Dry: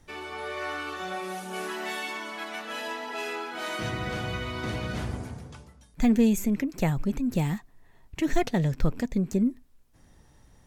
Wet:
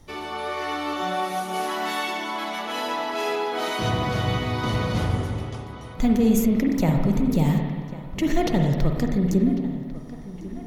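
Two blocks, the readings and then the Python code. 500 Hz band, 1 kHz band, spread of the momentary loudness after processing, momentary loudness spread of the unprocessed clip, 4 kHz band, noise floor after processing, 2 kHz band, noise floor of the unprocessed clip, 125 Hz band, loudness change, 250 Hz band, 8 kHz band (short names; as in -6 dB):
+6.0 dB, +8.0 dB, 12 LU, 10 LU, +6.5 dB, -37 dBFS, +3.0 dB, -58 dBFS, +7.0 dB, +5.0 dB, +5.0 dB, +4.0 dB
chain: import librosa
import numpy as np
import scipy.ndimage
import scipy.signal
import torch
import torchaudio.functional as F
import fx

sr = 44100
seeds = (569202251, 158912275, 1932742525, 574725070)

p1 = fx.graphic_eq_31(x, sr, hz=(1600, 2500, 8000), db=(-9, -6, -7))
p2 = fx.over_compress(p1, sr, threshold_db=-28.0, ratio=-1.0)
p3 = p1 + F.gain(torch.from_numpy(p2), -1.5).numpy()
p4 = fx.echo_filtered(p3, sr, ms=1098, feedback_pct=56, hz=3500.0, wet_db=-16)
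y = fx.rev_spring(p4, sr, rt60_s=1.6, pass_ms=(44, 55), chirp_ms=35, drr_db=2.0)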